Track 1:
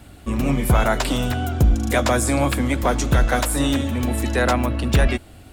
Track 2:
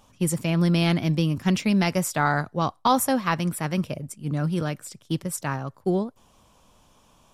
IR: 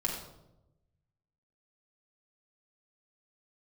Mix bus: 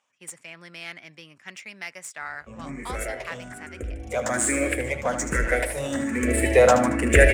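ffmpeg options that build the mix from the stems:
-filter_complex "[0:a]equalizer=f=125:t=o:w=1:g=-9,equalizer=f=500:t=o:w=1:g=12,equalizer=f=2k:t=o:w=1:g=6,equalizer=f=4k:t=o:w=1:g=-7,equalizer=f=8k:t=o:w=1:g=6,asplit=2[a][b];[b]afreqshift=1.2[c];[a][c]amix=inputs=2:normalize=1,adelay=2200,volume=-1.5dB,afade=t=in:st=3.9:d=0.49:silence=0.375837,afade=t=in:st=5.88:d=0.6:silence=0.421697,asplit=2[d][e];[e]volume=-9dB[f];[1:a]highpass=680,volume=-13dB[g];[f]aecho=0:1:76|152|228|304|380|456:1|0.43|0.185|0.0795|0.0342|0.0147[h];[d][g][h]amix=inputs=3:normalize=0,equalizer=f=125:t=o:w=1:g=10,equalizer=f=1k:t=o:w=1:g=-5,equalizer=f=2k:t=o:w=1:g=11,equalizer=f=4k:t=o:w=1:g=-5,equalizer=f=8k:t=o:w=1:g=11,adynamicsmooth=sensitivity=7:basefreq=5.4k"

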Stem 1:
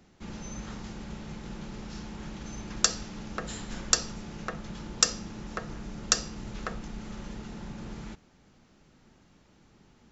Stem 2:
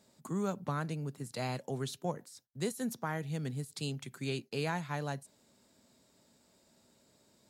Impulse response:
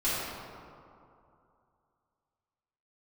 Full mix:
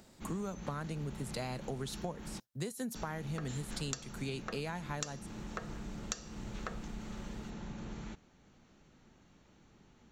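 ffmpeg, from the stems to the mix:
-filter_complex "[0:a]bandreject=f=5k:w=8.5,acompressor=mode=upward:threshold=-56dB:ratio=2.5,volume=-3.5dB,asplit=3[a][b][c];[a]atrim=end=2.4,asetpts=PTS-STARTPTS,afade=t=out:st=2.396:d=0.004:c=hsin[d];[b]atrim=start=2.4:end=2.95,asetpts=PTS-STARTPTS,volume=0[e];[c]atrim=start=2.95,asetpts=PTS-STARTPTS,afade=t=in:d=0.004:c=hsin[f];[d][e][f]concat=n=3:v=0:a=1[g];[1:a]acontrast=65,volume=-3dB[h];[g][h]amix=inputs=2:normalize=0,acompressor=threshold=-35dB:ratio=10"

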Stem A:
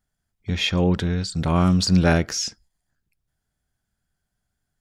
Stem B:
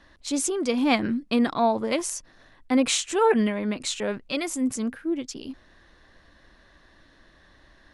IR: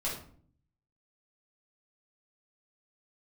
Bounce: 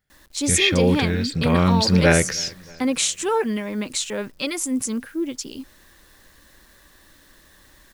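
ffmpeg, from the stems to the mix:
-filter_complex "[0:a]equalizer=f=125:t=o:w=1:g=9,equalizer=f=500:t=o:w=1:g=11,equalizer=f=2k:t=o:w=1:g=12,equalizer=f=4k:t=o:w=1:g=5,equalizer=f=8k:t=o:w=1:g=-5,volume=-5.5dB,asplit=2[a][b];[b]volume=-24dB[c];[1:a]bandreject=f=680:w=15,alimiter=limit=-14.5dB:level=0:latency=1:release=460,acrusher=bits=9:mix=0:aa=0.000001,adelay=100,volume=1.5dB[d];[c]aecho=0:1:314|628|942|1256|1570|1884|2198|2512:1|0.53|0.281|0.149|0.0789|0.0418|0.0222|0.0117[e];[a][d][e]amix=inputs=3:normalize=0,highshelf=f=5.3k:g=8.5,bandreject=f=690:w=12"

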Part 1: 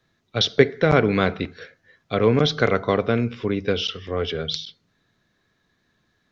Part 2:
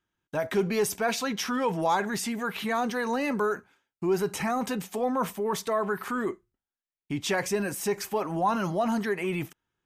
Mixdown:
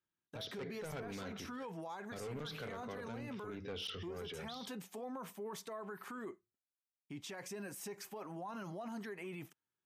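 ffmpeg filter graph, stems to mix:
-filter_complex "[0:a]agate=range=-33dB:threshold=-34dB:ratio=3:detection=peak,asoftclip=type=tanh:threshold=-16.5dB,volume=-2dB[a];[1:a]highpass=110,acompressor=threshold=-26dB:ratio=6,volume=-13dB,asplit=2[b][c];[c]apad=whole_len=278509[d];[a][d]sidechaincompress=threshold=-54dB:ratio=8:attack=27:release=361[e];[e][b]amix=inputs=2:normalize=0,asoftclip=type=hard:threshold=-25.5dB,alimiter=level_in=13.5dB:limit=-24dB:level=0:latency=1:release=31,volume=-13.5dB"

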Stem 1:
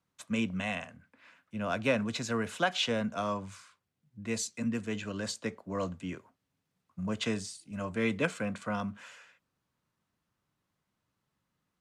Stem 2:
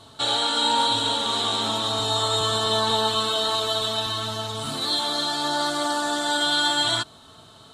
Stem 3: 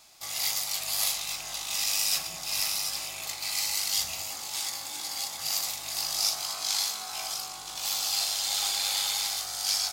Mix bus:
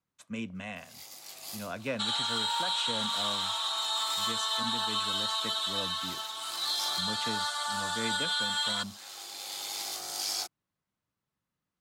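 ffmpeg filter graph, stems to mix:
-filter_complex "[0:a]volume=-6dB,asplit=2[a][b];[1:a]highpass=f=900:w=0.5412,highpass=f=900:w=1.3066,adelay=1800,volume=-5.5dB[c];[2:a]highpass=120,equalizer=f=350:t=o:w=1.4:g=13.5,adelay=550,volume=-3.5dB[d];[b]apad=whole_len=461920[e];[d][e]sidechaincompress=threshold=-53dB:ratio=8:attack=6.7:release=962[f];[a][c][f]amix=inputs=3:normalize=0,alimiter=limit=-20.5dB:level=0:latency=1:release=85"

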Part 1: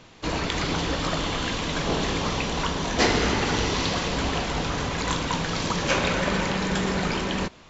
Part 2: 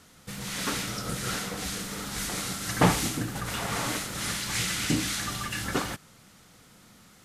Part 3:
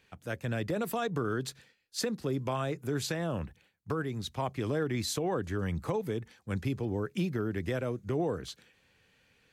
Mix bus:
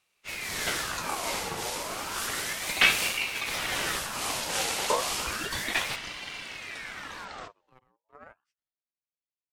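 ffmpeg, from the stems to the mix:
-filter_complex "[0:a]highpass=94,volume=-12dB[a];[1:a]volume=2.5dB[b];[2:a]bandreject=f=50:t=h:w=6,bandreject=f=100:t=h:w=6,bandreject=f=150:t=h:w=6,bandreject=f=200:t=h:w=6,bandreject=f=250:t=h:w=6,aeval=exprs='0.1*(cos(1*acos(clip(val(0)/0.1,-1,1)))-cos(1*PI/2))+0.0224*(cos(3*acos(clip(val(0)/0.1,-1,1)))-cos(3*PI/2))':c=same,volume=-9.5dB[c];[a][b][c]amix=inputs=3:normalize=0,agate=range=-19dB:threshold=-42dB:ratio=16:detection=peak,aeval=exprs='val(0)*sin(2*PI*1600*n/s+1600*0.6/0.32*sin(2*PI*0.32*n/s))':c=same"

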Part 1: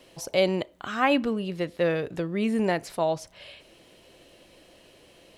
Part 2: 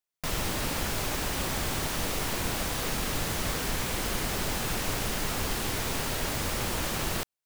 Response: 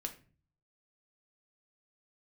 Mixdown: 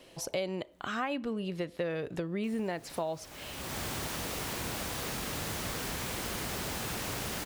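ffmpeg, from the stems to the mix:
-filter_complex "[0:a]volume=-1dB,asplit=2[a][b];[1:a]highpass=59,adelay=2200,volume=-4dB[c];[b]apad=whole_len=425756[d];[c][d]sidechaincompress=threshold=-48dB:ratio=3:attack=8.5:release=402[e];[a][e]amix=inputs=2:normalize=0,acompressor=threshold=-31dB:ratio=5"

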